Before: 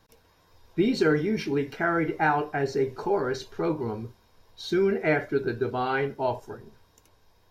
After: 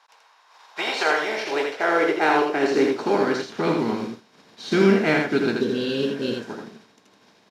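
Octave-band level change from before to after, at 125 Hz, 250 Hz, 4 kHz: +1.0, +4.5, +9.5 decibels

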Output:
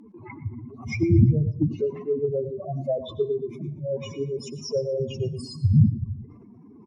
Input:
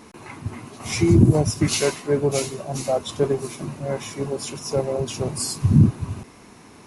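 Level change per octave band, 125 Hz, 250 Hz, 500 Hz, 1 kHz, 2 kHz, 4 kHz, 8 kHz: −2.0, −4.5, −3.0, −12.5, −8.5, −11.5, −20.0 decibels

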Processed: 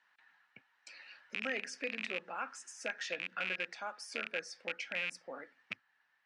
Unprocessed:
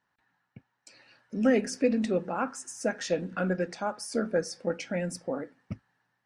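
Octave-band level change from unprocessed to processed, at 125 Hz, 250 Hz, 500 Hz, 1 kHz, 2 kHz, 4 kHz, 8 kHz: −24.5, −22.0, −16.0, −8.5, +0.5, −0.5, −10.0 decibels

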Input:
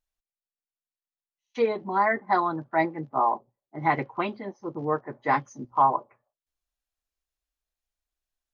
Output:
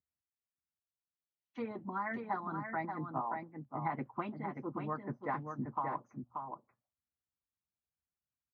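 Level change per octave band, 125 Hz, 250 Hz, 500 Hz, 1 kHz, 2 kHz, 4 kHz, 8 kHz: −5.5 dB, −8.0 dB, −15.0 dB, −13.5 dB, −13.0 dB, below −15 dB, can't be measured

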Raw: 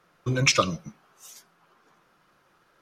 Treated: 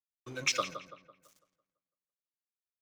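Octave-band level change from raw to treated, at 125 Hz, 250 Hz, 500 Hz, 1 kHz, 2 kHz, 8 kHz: −22.5, −17.0, −11.5, −9.5, −9.0, −9.0 decibels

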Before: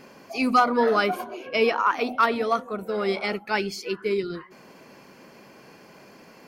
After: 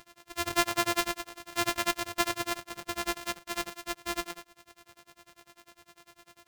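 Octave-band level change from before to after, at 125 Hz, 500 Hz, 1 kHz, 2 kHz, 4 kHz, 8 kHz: −7.0, −13.0, −10.0, −5.5, −0.5, +10.5 decibels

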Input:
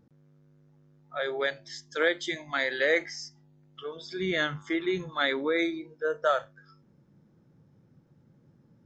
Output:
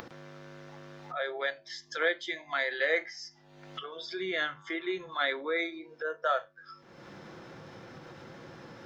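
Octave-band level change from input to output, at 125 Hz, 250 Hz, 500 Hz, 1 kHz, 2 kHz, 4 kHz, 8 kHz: −7.0 dB, −7.5 dB, −4.5 dB, −1.0 dB, −2.0 dB, −3.0 dB, can't be measured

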